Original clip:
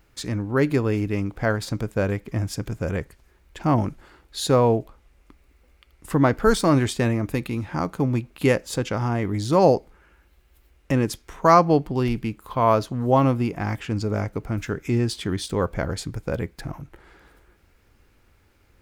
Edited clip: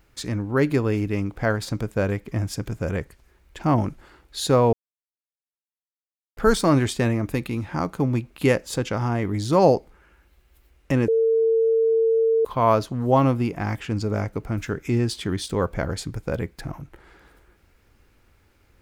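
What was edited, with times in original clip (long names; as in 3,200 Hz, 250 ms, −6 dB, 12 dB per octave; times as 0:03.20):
0:04.73–0:06.37: silence
0:11.08–0:12.45: beep over 451 Hz −16 dBFS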